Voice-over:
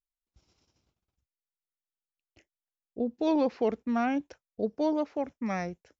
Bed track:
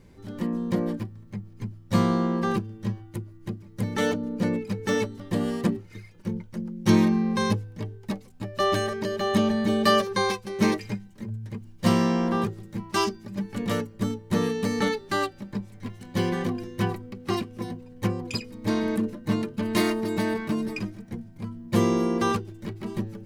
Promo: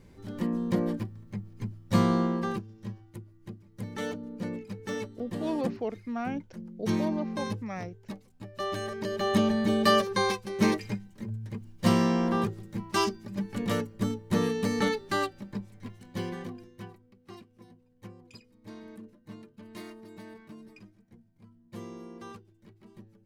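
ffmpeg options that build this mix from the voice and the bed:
ffmpeg -i stem1.wav -i stem2.wav -filter_complex "[0:a]adelay=2200,volume=-5.5dB[link_01];[1:a]volume=6dB,afade=type=out:start_time=2.2:duration=0.44:silence=0.398107,afade=type=in:start_time=8.75:duration=0.49:silence=0.421697,afade=type=out:start_time=15.04:duration=1.88:silence=0.11885[link_02];[link_01][link_02]amix=inputs=2:normalize=0" out.wav

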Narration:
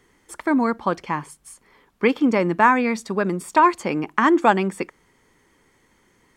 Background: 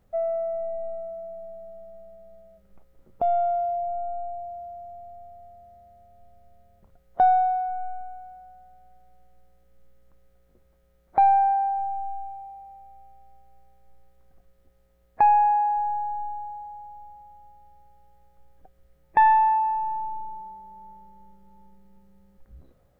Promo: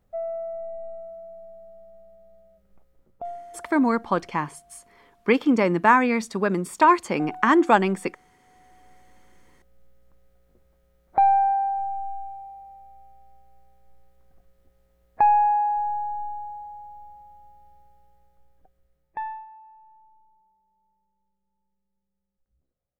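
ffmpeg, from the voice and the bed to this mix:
ffmpeg -i stem1.wav -i stem2.wav -filter_complex "[0:a]adelay=3250,volume=-1dB[link_01];[1:a]volume=15.5dB,afade=type=out:start_time=2.91:duration=0.52:silence=0.16788,afade=type=in:start_time=8.41:duration=0.48:silence=0.105925,afade=type=out:start_time=17.74:duration=1.72:silence=0.0530884[link_02];[link_01][link_02]amix=inputs=2:normalize=0" out.wav

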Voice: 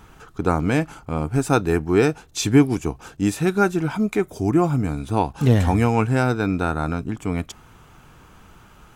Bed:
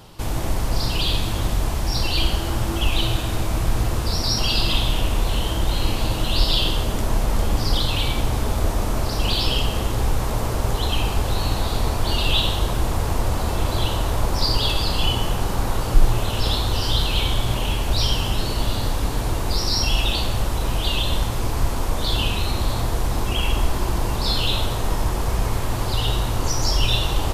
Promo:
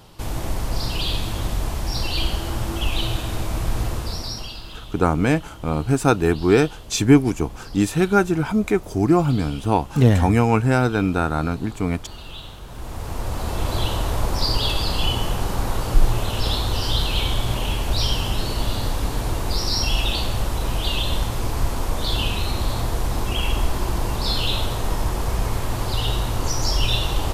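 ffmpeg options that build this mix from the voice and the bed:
ffmpeg -i stem1.wav -i stem2.wav -filter_complex "[0:a]adelay=4550,volume=1.5dB[link_01];[1:a]volume=14.5dB,afade=type=out:start_time=3.86:duration=0.74:silence=0.16788,afade=type=in:start_time=12.65:duration=1.11:silence=0.141254[link_02];[link_01][link_02]amix=inputs=2:normalize=0" out.wav

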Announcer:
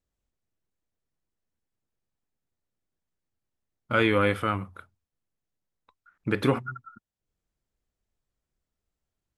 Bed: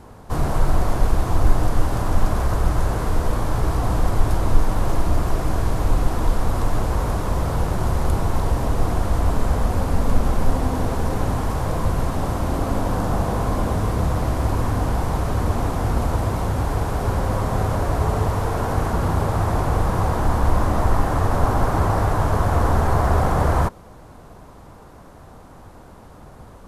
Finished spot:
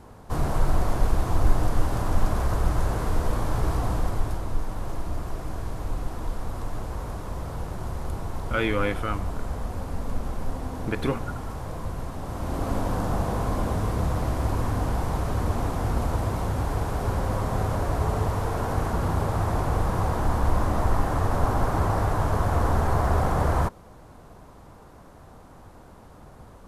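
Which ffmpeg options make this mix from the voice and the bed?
ffmpeg -i stem1.wav -i stem2.wav -filter_complex "[0:a]adelay=4600,volume=-3dB[link_01];[1:a]volume=2.5dB,afade=type=out:start_time=3.73:duration=0.74:silence=0.446684,afade=type=in:start_time=12.24:duration=0.47:silence=0.473151[link_02];[link_01][link_02]amix=inputs=2:normalize=0" out.wav

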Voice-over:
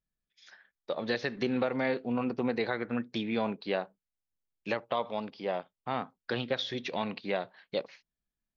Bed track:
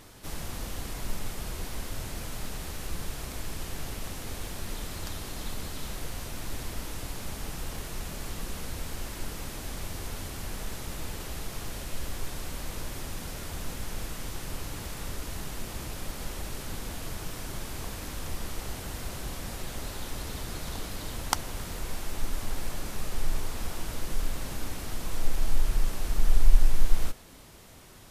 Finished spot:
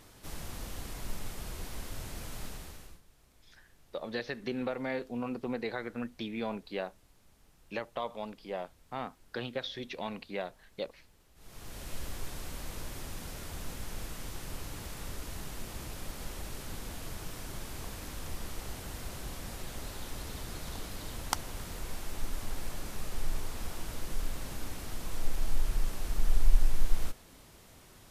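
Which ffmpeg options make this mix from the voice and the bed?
ffmpeg -i stem1.wav -i stem2.wav -filter_complex "[0:a]adelay=3050,volume=-5dB[link_01];[1:a]volume=17.5dB,afade=type=out:start_time=2.44:duration=0.57:silence=0.0794328,afade=type=in:start_time=11.35:duration=0.56:silence=0.0749894[link_02];[link_01][link_02]amix=inputs=2:normalize=0" out.wav

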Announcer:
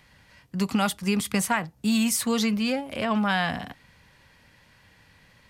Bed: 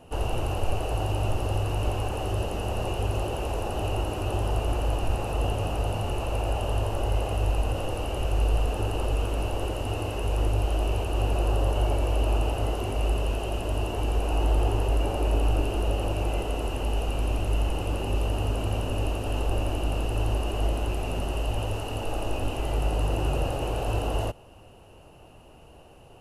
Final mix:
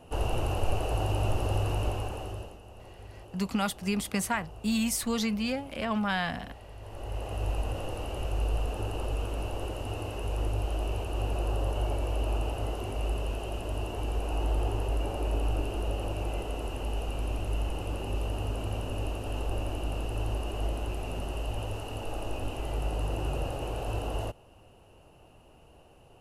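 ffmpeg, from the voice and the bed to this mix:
ffmpeg -i stem1.wav -i stem2.wav -filter_complex "[0:a]adelay=2800,volume=-5dB[link_01];[1:a]volume=13dB,afade=type=out:start_time=1.7:duration=0.89:silence=0.11885,afade=type=in:start_time=6.78:duration=0.71:silence=0.188365[link_02];[link_01][link_02]amix=inputs=2:normalize=0" out.wav

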